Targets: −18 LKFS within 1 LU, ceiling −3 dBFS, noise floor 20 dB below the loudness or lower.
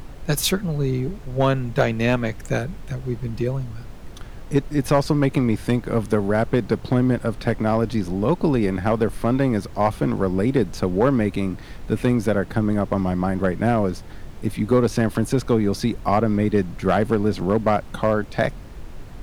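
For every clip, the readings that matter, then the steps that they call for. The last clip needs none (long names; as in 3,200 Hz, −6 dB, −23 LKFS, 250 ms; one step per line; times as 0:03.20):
share of clipped samples 0.6%; peaks flattened at −8.5 dBFS; background noise floor −37 dBFS; target noise floor −42 dBFS; integrated loudness −22.0 LKFS; sample peak −8.5 dBFS; target loudness −18.0 LKFS
→ clipped peaks rebuilt −8.5 dBFS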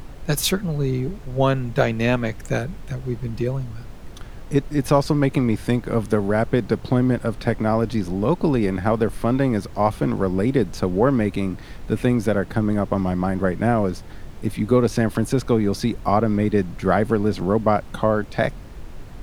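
share of clipped samples 0.0%; background noise floor −37 dBFS; target noise floor −42 dBFS
→ noise reduction from a noise print 6 dB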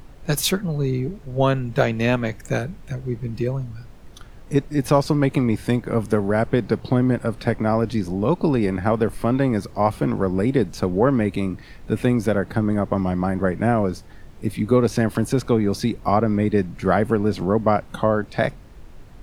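background noise floor −43 dBFS; integrated loudness −22.0 LKFS; sample peak −3.0 dBFS; target loudness −18.0 LKFS
→ level +4 dB
brickwall limiter −3 dBFS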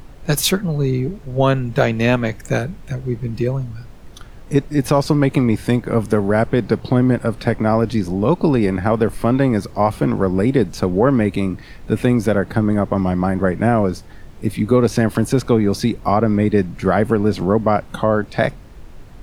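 integrated loudness −18.0 LKFS; sample peak −3.0 dBFS; background noise floor −39 dBFS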